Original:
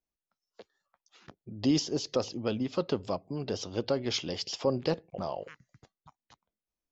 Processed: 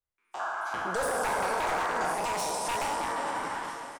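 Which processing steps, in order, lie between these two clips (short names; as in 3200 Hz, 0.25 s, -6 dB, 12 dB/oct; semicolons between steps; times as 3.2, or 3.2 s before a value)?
spectral trails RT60 1.91 s; AGC gain up to 14 dB; bell 6000 Hz -8 dB 2.7 oct; on a send: feedback echo 1.126 s, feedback 38%, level -18 dB; on the sum: speed mistake 45 rpm record played at 78 rpm; non-linear reverb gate 0.48 s flat, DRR 3.5 dB; wavefolder -11 dBFS; bell 240 Hz -7.5 dB 1.6 oct; limiter -19.5 dBFS, peak gain reduction 10 dB; painted sound noise, 0.39–2.14, 620–1700 Hz -30 dBFS; gain -4 dB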